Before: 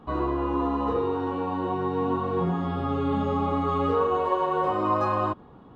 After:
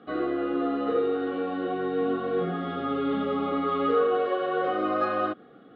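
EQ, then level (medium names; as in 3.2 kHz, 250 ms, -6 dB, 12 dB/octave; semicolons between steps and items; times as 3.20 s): Butterworth band-stop 950 Hz, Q 1.9; cabinet simulation 390–3500 Hz, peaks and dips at 390 Hz -5 dB, 600 Hz -8 dB, 990 Hz -7 dB, 1.7 kHz -3 dB, 2.6 kHz -8 dB; +7.5 dB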